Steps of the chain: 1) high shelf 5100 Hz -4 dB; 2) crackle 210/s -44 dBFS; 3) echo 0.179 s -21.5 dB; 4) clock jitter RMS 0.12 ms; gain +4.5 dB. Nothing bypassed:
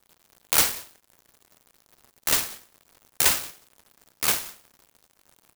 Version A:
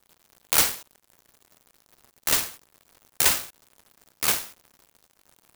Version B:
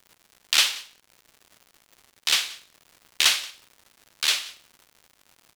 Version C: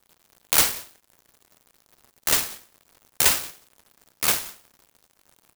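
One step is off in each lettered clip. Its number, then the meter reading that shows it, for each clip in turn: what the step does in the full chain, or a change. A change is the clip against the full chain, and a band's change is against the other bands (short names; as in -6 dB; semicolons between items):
3, momentary loudness spread change +1 LU; 4, 4 kHz band +10.5 dB; 1, loudness change +1.5 LU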